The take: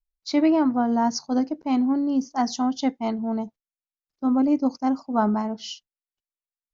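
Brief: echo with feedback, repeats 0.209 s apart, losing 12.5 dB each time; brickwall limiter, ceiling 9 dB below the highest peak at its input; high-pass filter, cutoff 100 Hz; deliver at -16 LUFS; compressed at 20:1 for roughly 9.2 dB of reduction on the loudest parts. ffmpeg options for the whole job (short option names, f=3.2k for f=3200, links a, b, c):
-af "highpass=100,acompressor=threshold=-25dB:ratio=20,alimiter=level_in=0.5dB:limit=-24dB:level=0:latency=1,volume=-0.5dB,aecho=1:1:209|418|627:0.237|0.0569|0.0137,volume=17dB"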